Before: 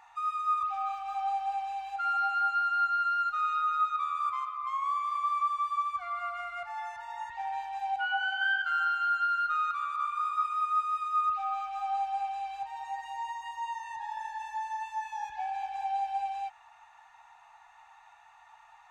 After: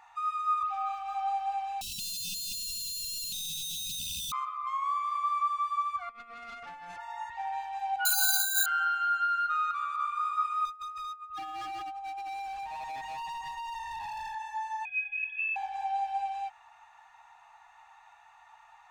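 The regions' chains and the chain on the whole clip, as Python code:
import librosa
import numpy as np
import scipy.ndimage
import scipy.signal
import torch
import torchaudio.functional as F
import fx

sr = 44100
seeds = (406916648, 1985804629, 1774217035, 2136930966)

y = fx.chain(x, sr, fx.clip_1bit(),
    fx.brickwall_bandstop(low_hz=240.0, high_hz=2500.0),
    fx.low_shelf(hz=390.0, db=5.0), at=(1.81, 4.32))
y = fx.chain(y, sr, fx.over_compress(threshold_db=-40.0, ratio=-0.5),
    fx.tube_stage(drive_db=39.0, bias=0.7), at=(6.09, 6.98))
y = fx.chain(y, sr, fx.resample_bad(factor=8, down='filtered', up='zero_stuff'),
    fx.over_compress(threshold_db=-22.0, ratio=-0.5),
    fx.ensemble(), at=(8.05, 8.66))
y = fx.chain(y, sr, fx.over_compress(threshold_db=-35.0, ratio=-0.5),
    fx.low_shelf(hz=400.0, db=10.5),
    fx.clip_hard(threshold_db=-36.5), at=(10.65, 14.35))
y = fx.chain(y, sr, fx.high_shelf_res(hz=1500.0, db=-12.0, q=1.5),
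    fx.freq_invert(carrier_hz=3400), at=(14.85, 15.56))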